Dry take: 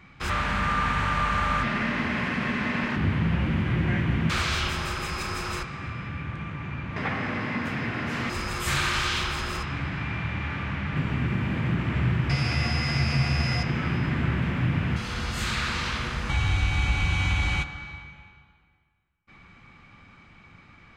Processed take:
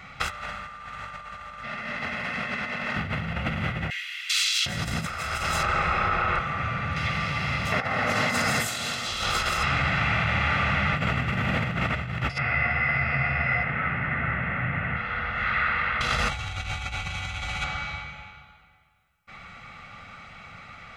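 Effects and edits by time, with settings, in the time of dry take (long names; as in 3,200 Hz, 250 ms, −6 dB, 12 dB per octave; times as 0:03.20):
0:03.90–0:09.39: multiband delay without the direct sound highs, lows 760 ms, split 2,500 Hz
0:12.38–0:16.01: transistor ladder low-pass 2,300 Hz, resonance 45%
whole clip: low-shelf EQ 270 Hz −11.5 dB; comb filter 1.5 ms, depth 66%; compressor whose output falls as the input rises −33 dBFS, ratio −0.5; level +6.5 dB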